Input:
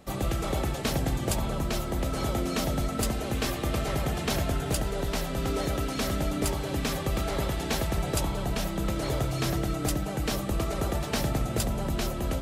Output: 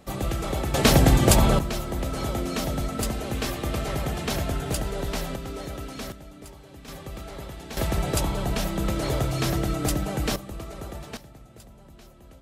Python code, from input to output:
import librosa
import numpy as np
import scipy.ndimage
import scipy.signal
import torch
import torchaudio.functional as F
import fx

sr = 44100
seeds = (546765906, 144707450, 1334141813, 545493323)

y = fx.gain(x, sr, db=fx.steps((0.0, 1.0), (0.74, 11.0), (1.59, 0.5), (5.36, -6.0), (6.12, -16.0), (6.88, -9.0), (7.77, 3.0), (10.36, -8.0), (11.17, -20.0)))